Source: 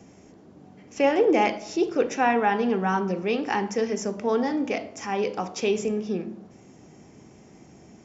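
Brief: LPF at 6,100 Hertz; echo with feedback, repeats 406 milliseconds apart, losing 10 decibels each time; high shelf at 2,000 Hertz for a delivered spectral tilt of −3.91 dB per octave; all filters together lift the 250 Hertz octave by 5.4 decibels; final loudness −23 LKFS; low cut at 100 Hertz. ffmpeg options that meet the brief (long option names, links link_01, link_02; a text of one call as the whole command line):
ffmpeg -i in.wav -af "highpass=100,lowpass=6100,equalizer=frequency=250:width_type=o:gain=7,highshelf=frequency=2000:gain=-6.5,aecho=1:1:406|812|1218|1624:0.316|0.101|0.0324|0.0104,volume=-0.5dB" out.wav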